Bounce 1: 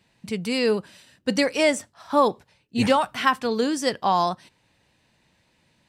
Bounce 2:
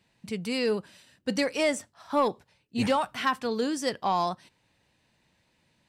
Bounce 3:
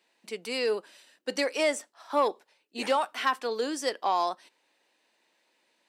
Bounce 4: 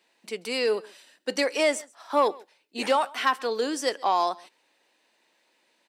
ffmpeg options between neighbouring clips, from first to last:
-af "asoftclip=type=tanh:threshold=-10dB,volume=-4.5dB"
-af "highpass=f=320:w=0.5412,highpass=f=320:w=1.3066"
-af "aecho=1:1:134:0.0668,volume=3dB"

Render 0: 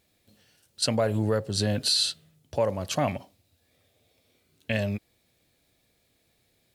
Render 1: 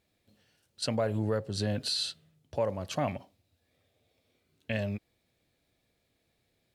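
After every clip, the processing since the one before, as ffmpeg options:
-af "highshelf=f=5.1k:g=-7.5,volume=-4.5dB"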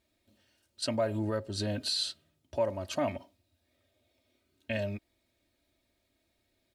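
-af "aecho=1:1:3.2:0.68,volume=-2dB"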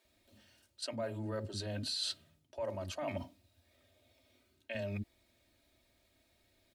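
-filter_complex "[0:a]areverse,acompressor=threshold=-40dB:ratio=6,areverse,acrossover=split=310[a][b];[a]adelay=50[c];[c][b]amix=inputs=2:normalize=0,volume=4.5dB"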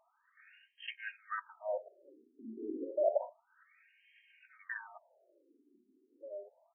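-filter_complex "[0:a]asplit=2[a][b];[b]adelay=1516,volume=-12dB,highshelf=f=4k:g=-34.1[c];[a][c]amix=inputs=2:normalize=0,afftfilt=real='re*between(b*sr/1024,300*pow(2300/300,0.5+0.5*sin(2*PI*0.3*pts/sr))/1.41,300*pow(2300/300,0.5+0.5*sin(2*PI*0.3*pts/sr))*1.41)':imag='im*between(b*sr/1024,300*pow(2300/300,0.5+0.5*sin(2*PI*0.3*pts/sr))/1.41,300*pow(2300/300,0.5+0.5*sin(2*PI*0.3*pts/sr))*1.41)':win_size=1024:overlap=0.75,volume=11dB"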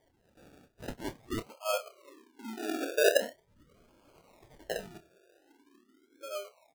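-filter_complex "[0:a]acrusher=samples=33:mix=1:aa=0.000001:lfo=1:lforange=19.8:lforate=0.44,asplit=2[a][b];[b]adelay=28,volume=-10dB[c];[a][c]amix=inputs=2:normalize=0,volume=5dB"

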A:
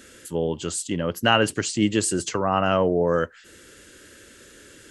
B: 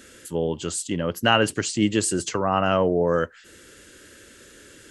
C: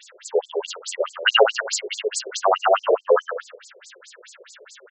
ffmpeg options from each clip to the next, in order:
-af anull
-filter_complex "[0:a]asplit=2[a][b];[b]aecho=0:1:81|162|243|324|405:0.596|0.256|0.11|0.0474|0.0204[c];[a][c]amix=inputs=2:normalize=0,afftfilt=real='re*between(b*sr/1024,490*pow(6000/490,0.5+0.5*sin(2*PI*4.7*pts/sr))/1.41,490*pow(6000/490,0.5+0.5*sin(2*PI*4.7*pts/sr))*1.41)':imag='im*between(b*sr/1024,490*pow(6000/490,0.5+0.5*sin(2*PI*4.7*pts/sr))/1.41,490*pow(6000/490,0.5+0.5*sin(2*PI*4.7*pts/sr))*1.41)':win_size=1024:overlap=0.75,volume=9dB"

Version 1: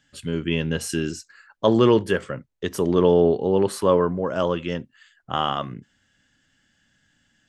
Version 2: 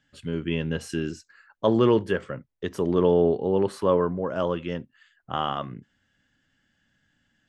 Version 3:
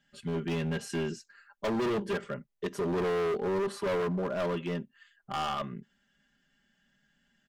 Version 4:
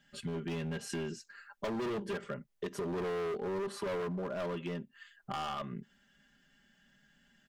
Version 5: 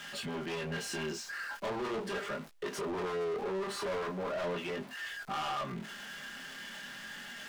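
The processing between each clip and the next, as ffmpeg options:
-af "lowpass=f=3k:p=1,volume=-3dB"
-af "equalizer=f=77:t=o:w=0.61:g=-10,aecho=1:1:5:0.89,asoftclip=type=hard:threshold=-23.5dB,volume=-4dB"
-af "acompressor=threshold=-41dB:ratio=4,volume=4dB"
-filter_complex "[0:a]aeval=exprs='val(0)+0.5*0.00376*sgn(val(0))':c=same,flanger=delay=19:depth=7.9:speed=0.39,asplit=2[a][b];[b]highpass=f=720:p=1,volume=20dB,asoftclip=type=tanh:threshold=-29dB[c];[a][c]amix=inputs=2:normalize=0,lowpass=f=4.5k:p=1,volume=-6dB"

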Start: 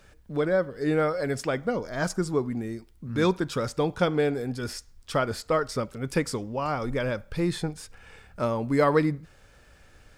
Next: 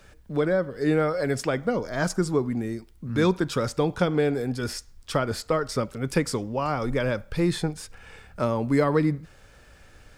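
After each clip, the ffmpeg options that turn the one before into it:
-filter_complex "[0:a]acrossover=split=330[a][b];[b]acompressor=threshold=-25dB:ratio=4[c];[a][c]amix=inputs=2:normalize=0,volume=3dB"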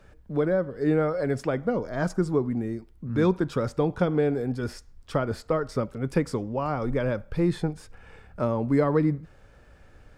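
-af "highshelf=f=2.1k:g=-12"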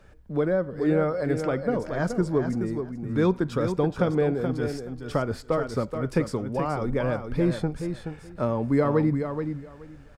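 -af "aecho=1:1:426|852|1278:0.422|0.0717|0.0122"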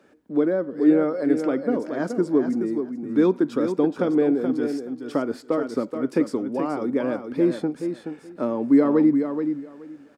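-af "highpass=f=280:t=q:w=3.4,volume=-2dB"

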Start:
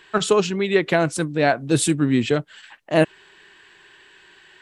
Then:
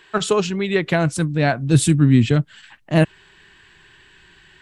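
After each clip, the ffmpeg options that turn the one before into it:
-af "asubboost=boost=9:cutoff=180"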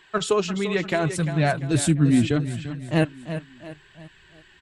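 -af "aecho=1:1:345|690|1035|1380:0.282|0.121|0.0521|0.0224,flanger=delay=0.9:depth=3.7:regen=-47:speed=0.74:shape=triangular"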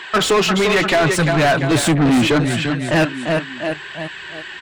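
-filter_complex "[0:a]asplit=2[a][b];[b]highpass=f=720:p=1,volume=30dB,asoftclip=type=tanh:threshold=-7dB[c];[a][c]amix=inputs=2:normalize=0,lowpass=f=3.1k:p=1,volume=-6dB"

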